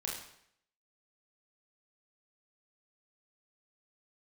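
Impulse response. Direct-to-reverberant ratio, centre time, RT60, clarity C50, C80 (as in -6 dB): -3.0 dB, 48 ms, 0.70 s, 2.5 dB, 6.0 dB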